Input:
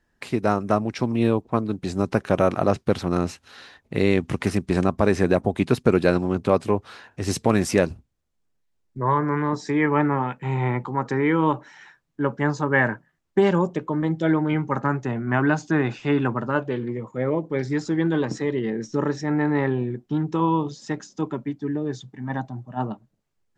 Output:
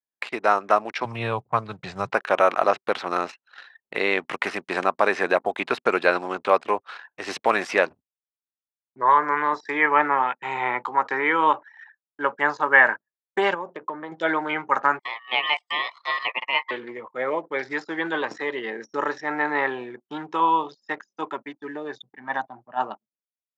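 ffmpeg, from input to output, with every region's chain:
ffmpeg -i in.wav -filter_complex "[0:a]asettb=1/sr,asplit=3[link_01][link_02][link_03];[link_01]atrim=end=1.054[link_04];[link_02]atrim=start=1.05:end=2.14,asetpts=PTS-STARTPTS,afade=type=in:duration=0.004:curve=qsin,afade=type=out:start_time=1.086:duration=0.004:curve=qsin,lowpass=frequency=3700:poles=1,lowshelf=frequency=190:width_type=q:width=3:gain=13.5[link_05];[link_03]atrim=start=2.136[link_06];[link_04][link_05]acrossfade=duration=0.004:curve1=hsin:curve2=qsin[link_07];[link_07][link_06]acrossfade=duration=0.004:curve1=qsin:curve2=hsin,asettb=1/sr,asplit=3[link_08][link_09][link_10];[link_08]atrim=end=13.544[link_11];[link_09]atrim=start=13.54:end=14.12,asetpts=PTS-STARTPTS,afade=type=in:duration=0.004:curve=qsin,afade=type=out:start_time=0.576:duration=0.004:curve=qsin,lowpass=7700,highshelf=frequency=2200:gain=-11.5,acompressor=threshold=-24dB:ratio=6:attack=3.2:release=140:knee=1:detection=peak[link_12];[link_10]atrim=start=14.116[link_13];[link_11][link_12]acrossfade=duration=0.004:curve1=hsin:curve2=qsin[link_14];[link_14][link_13]acrossfade=duration=0.004:curve1=qsin:curve2=hsin,asettb=1/sr,asplit=3[link_15][link_16][link_17];[link_15]atrim=end=14.994[link_18];[link_16]atrim=start=14.99:end=16.71,asetpts=PTS-STARTPTS,afade=type=in:duration=0.004:curve=qsin,afade=type=out:start_time=1.716:duration=0.004:curve=qsin,highpass=frequency=470:width=0.5412,highpass=frequency=470:width=1.3066,aeval=exprs='val(0)*sin(2*PI*1500*n/s)':channel_layout=same[link_19];[link_17]atrim=start=16.706[link_20];[link_18][link_19]acrossfade=duration=0.004:curve1=hsin:curve2=qsin[link_21];[link_21][link_20]acrossfade=duration=0.004:curve1=qsin:curve2=hsin,acrossover=split=3600[link_22][link_23];[link_23]acompressor=threshold=-54dB:ratio=4:attack=1:release=60[link_24];[link_22][link_24]amix=inputs=2:normalize=0,anlmdn=0.158,highpass=810,volume=7.5dB" out.wav

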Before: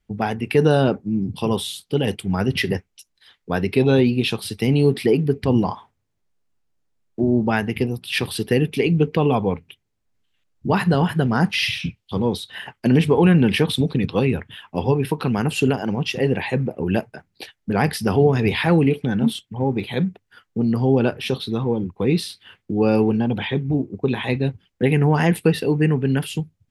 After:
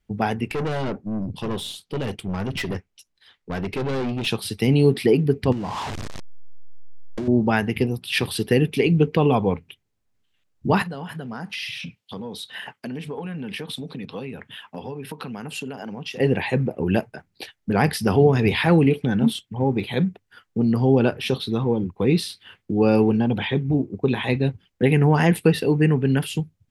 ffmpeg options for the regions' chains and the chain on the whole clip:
ffmpeg -i in.wav -filter_complex "[0:a]asettb=1/sr,asplit=3[link_01][link_02][link_03];[link_01]atrim=end=0.474[link_04];[link_02]atrim=start=0.47:end=4.27,asetpts=PTS-STARTPTS,afade=type=in:duration=0.004:curve=qsin,afade=type=out:start_time=3.796:duration=0.004:curve=qsin,highshelf=frequency=7700:gain=-7,aeval=exprs='(tanh(14.1*val(0)+0.4)-tanh(0.4))/14.1':channel_layout=same[link_05];[link_03]atrim=start=4.266[link_06];[link_04][link_05]acrossfade=duration=0.004:curve1=hsin:curve2=qsin[link_07];[link_07][link_06]acrossfade=duration=0.004:curve1=qsin:curve2=hsin,asettb=1/sr,asplit=3[link_08][link_09][link_10];[link_08]atrim=end=5.524[link_11];[link_09]atrim=start=5.52:end=7.28,asetpts=PTS-STARTPTS,afade=type=in:duration=0.004:curve=qsin,afade=type=out:start_time=1.756:duration=0.004:curve=qsin,aeval=exprs='val(0)+0.5*0.0668*sgn(val(0))':channel_layout=same,lowpass=6600,acompressor=threshold=-24dB:ratio=10:attack=3.2:release=140:knee=1:detection=peak[link_12];[link_10]atrim=start=7.276[link_13];[link_11][link_12]acrossfade=duration=0.004:curve1=hsin:curve2=qsin[link_14];[link_14][link_13]acrossfade=duration=0.004:curve1=qsin:curve2=hsin,asettb=1/sr,asplit=3[link_15][link_16][link_17];[link_15]atrim=end=10.824[link_18];[link_16]atrim=start=10.82:end=16.2,asetpts=PTS-STARTPTS,afade=type=in:duration=0.004:curve=qsin,afade=type=out:start_time=5.376:duration=0.004:curve=qsin,acompressor=threshold=-29dB:ratio=4:attack=3.2:release=140:knee=1:detection=peak,highpass=160,bandreject=frequency=350:width=5.7[link_19];[link_17]atrim=start=16.196[link_20];[link_18][link_19]acrossfade=duration=0.004:curve1=hsin:curve2=qsin[link_21];[link_21][link_20]acrossfade=duration=0.004:curve1=qsin:curve2=hsin" out.wav

